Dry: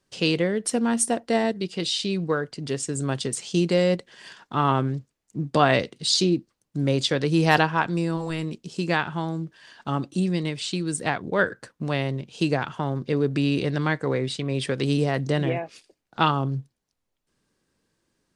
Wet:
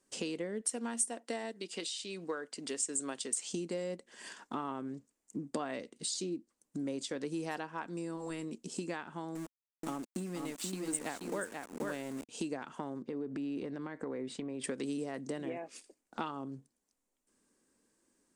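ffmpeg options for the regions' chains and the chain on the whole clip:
ffmpeg -i in.wav -filter_complex "[0:a]asettb=1/sr,asplit=3[link_01][link_02][link_03];[link_01]atrim=end=0.614[link_04];[link_02]atrim=start=0.61:end=3.5,asetpts=PTS-STARTPTS,afade=type=in:duration=0.004:curve=qsin,afade=type=out:start_time=2.886:duration=0.004:curve=qsin,highpass=frequency=550:poles=1,equalizer=frequency=3200:width=0.98:gain=4[link_05];[link_03]atrim=start=3.496[link_06];[link_04][link_05]acrossfade=duration=0.004:curve1=hsin:curve2=qsin[link_07];[link_07][link_06]acrossfade=duration=0.004:curve1=qsin:curve2=hsin,asettb=1/sr,asplit=3[link_08][link_09][link_10];[link_08]atrim=end=9.354[link_11];[link_09]atrim=start=9.35:end=12.29,asetpts=PTS-STARTPTS,afade=type=in:duration=0.004:curve=qsin,afade=type=out:start_time=2.936:duration=0.004:curve=qsin,aeval=exprs='val(0)*gte(abs(val(0)),0.0251)':channel_layout=same,aecho=1:1:480:0.531,atrim=end_sample=129654[link_12];[link_10]atrim=start=12.286[link_13];[link_11][link_12]acrossfade=duration=0.004:curve1=hsin:curve2=qsin[link_14];[link_14][link_13]acrossfade=duration=0.004:curve1=qsin:curve2=hsin,asettb=1/sr,asplit=3[link_15][link_16][link_17];[link_15]atrim=end=13.024[link_18];[link_16]atrim=start=13.02:end=14.64,asetpts=PTS-STARTPTS,afade=type=in:duration=0.004:curve=qsin,afade=type=out:start_time=1.616:duration=0.004:curve=qsin,acompressor=threshold=-27dB:ratio=6:attack=3.2:release=140:knee=1:detection=peak,lowpass=frequency=1900:poles=1[link_19];[link_17]atrim=start=14.636[link_20];[link_18][link_19]acrossfade=duration=0.004:curve1=hsin:curve2=qsin[link_21];[link_21][link_20]acrossfade=duration=0.004:curve1=qsin:curve2=hsin,highshelf=frequency=7800:gain=5,acompressor=threshold=-33dB:ratio=5,equalizer=frequency=125:width_type=o:width=1:gain=-10,equalizer=frequency=250:width_type=o:width=1:gain=11,equalizer=frequency=500:width_type=o:width=1:gain=4,equalizer=frequency=1000:width_type=o:width=1:gain=4,equalizer=frequency=2000:width_type=o:width=1:gain=3,equalizer=frequency=4000:width_type=o:width=1:gain=-3,equalizer=frequency=8000:width_type=o:width=1:gain=12,volume=-8.5dB" out.wav

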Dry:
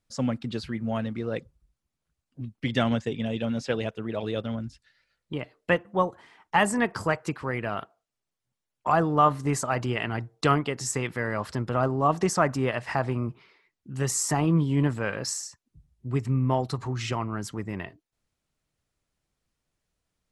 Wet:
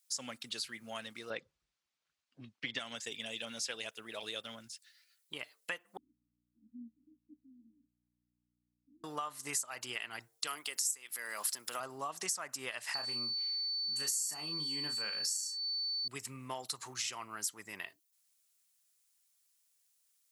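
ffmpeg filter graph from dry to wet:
ffmpeg -i in.wav -filter_complex "[0:a]asettb=1/sr,asplit=3[link_01][link_02][link_03];[link_01]atrim=end=1.304[link_04];[link_02]atrim=start=1.3:end=2.79,asetpts=PTS-STARTPTS,afade=type=in:duration=0.004:curve=qsin,afade=type=out:start_time=1.486:duration=0.004:curve=qsin,lowpass=5000,aemphasis=mode=reproduction:type=75fm,acontrast=75[link_05];[link_03]atrim=start=2.786[link_06];[link_04][link_05]acrossfade=duration=0.004:curve1=hsin:curve2=qsin[link_07];[link_07][link_06]acrossfade=duration=0.004:curve1=qsin:curve2=hsin,asettb=1/sr,asplit=3[link_08][link_09][link_10];[link_08]atrim=end=5.974[link_11];[link_09]atrim=start=5.97:end=9.04,asetpts=PTS-STARTPTS,afade=type=in:duration=0.004:curve=qsin,afade=type=out:start_time=3.066:duration=0.004:curve=qsin,asuperpass=centerf=260:order=12:qfactor=3.1,aeval=exprs='val(0)+0.00178*(sin(2*PI*60*n/s)+sin(2*PI*2*60*n/s)/2+sin(2*PI*3*60*n/s)/3+sin(2*PI*4*60*n/s)/4+sin(2*PI*5*60*n/s)/5)':channel_layout=same[link_12];[link_10]atrim=start=9.036[link_13];[link_11][link_12]acrossfade=duration=0.004:curve1=hsin:curve2=qsin[link_14];[link_14][link_13]acrossfade=duration=0.004:curve1=qsin:curve2=hsin,asettb=1/sr,asplit=3[link_15][link_16][link_17];[link_15]atrim=end=10.474[link_18];[link_16]atrim=start=10.47:end=11.8,asetpts=PTS-STARTPTS,afade=type=in:duration=0.004:curve=qsin,afade=type=out:start_time=1.326:duration=0.004:curve=qsin,highpass=200,aemphasis=mode=production:type=50kf,acompressor=mode=upward:threshold=-28dB:ratio=2.5:attack=3.2:release=140:knee=2.83:detection=peak[link_19];[link_17]atrim=start=11.796[link_20];[link_18][link_19]acrossfade=duration=0.004:curve1=hsin:curve2=qsin[link_21];[link_21][link_20]acrossfade=duration=0.004:curve1=qsin:curve2=hsin,asettb=1/sr,asplit=3[link_22][link_23][link_24];[link_22]atrim=end=12.944[link_25];[link_23]atrim=start=12.94:end=16.08,asetpts=PTS-STARTPTS,afade=type=in:duration=0.004:curve=qsin,afade=type=out:start_time=3.136:duration=0.004:curve=qsin,equalizer=frequency=200:width=1.2:gain=6.5,aeval=exprs='val(0)+0.0316*sin(2*PI*4500*n/s)':channel_layout=same,asplit=2[link_26][link_27];[link_27]adelay=33,volume=-7dB[link_28];[link_26][link_28]amix=inputs=2:normalize=0,atrim=end_sample=138474[link_29];[link_24]atrim=start=16.076[link_30];[link_25][link_29]acrossfade=duration=0.004:curve1=hsin:curve2=qsin[link_31];[link_31][link_30]acrossfade=duration=0.004:curve1=qsin:curve2=hsin,aderivative,acompressor=threshold=-44dB:ratio=10,highshelf=frequency=7900:gain=6.5,volume=8dB" out.wav

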